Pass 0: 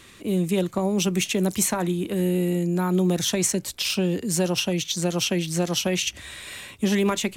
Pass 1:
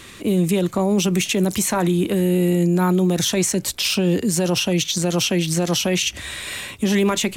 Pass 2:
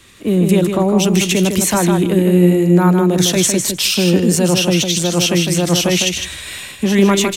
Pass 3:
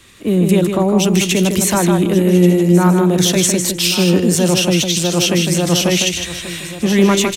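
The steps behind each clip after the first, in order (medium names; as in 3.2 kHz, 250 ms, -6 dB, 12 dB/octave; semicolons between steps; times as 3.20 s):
peak limiter -19 dBFS, peak gain reduction 10 dB; trim +8 dB
feedback delay 156 ms, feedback 16%, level -5 dB; three bands expanded up and down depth 40%; trim +4.5 dB
delay 1134 ms -14 dB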